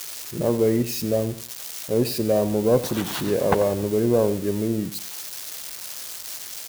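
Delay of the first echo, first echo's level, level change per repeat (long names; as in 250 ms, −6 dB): 90 ms, −15.0 dB, −11.0 dB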